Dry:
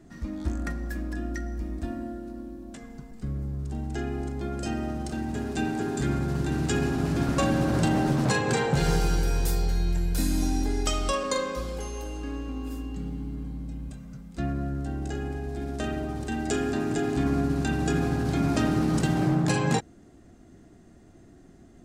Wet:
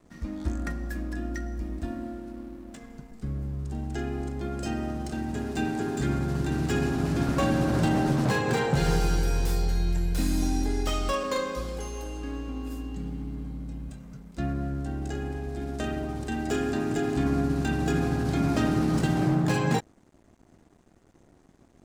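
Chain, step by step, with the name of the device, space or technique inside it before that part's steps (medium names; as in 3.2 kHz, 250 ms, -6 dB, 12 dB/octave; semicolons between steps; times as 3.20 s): early transistor amplifier (crossover distortion -54 dBFS; slew-rate limiter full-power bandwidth 100 Hz)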